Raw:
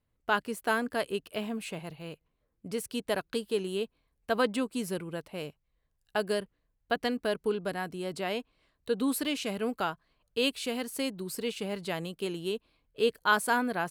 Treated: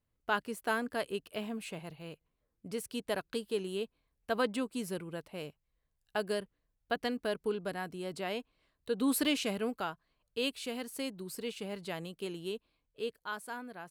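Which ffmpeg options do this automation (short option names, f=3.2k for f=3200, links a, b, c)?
-af "volume=2dB,afade=t=in:st=8.94:d=0.3:silence=0.501187,afade=t=out:st=9.24:d=0.56:silence=0.421697,afade=t=out:st=12.51:d=0.8:silence=0.334965"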